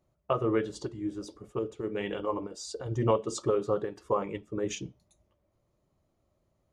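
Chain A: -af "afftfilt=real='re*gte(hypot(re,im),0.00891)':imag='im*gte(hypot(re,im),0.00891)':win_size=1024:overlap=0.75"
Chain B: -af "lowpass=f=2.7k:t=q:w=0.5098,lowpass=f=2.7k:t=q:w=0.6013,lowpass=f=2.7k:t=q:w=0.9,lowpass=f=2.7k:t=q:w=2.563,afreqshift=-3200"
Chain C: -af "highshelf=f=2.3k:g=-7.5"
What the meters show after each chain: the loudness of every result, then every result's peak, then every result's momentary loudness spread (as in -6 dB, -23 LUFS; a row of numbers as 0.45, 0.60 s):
-32.0, -28.5, -32.5 LUFS; -12.5, -13.0, -13.5 dBFS; 11, 11, 11 LU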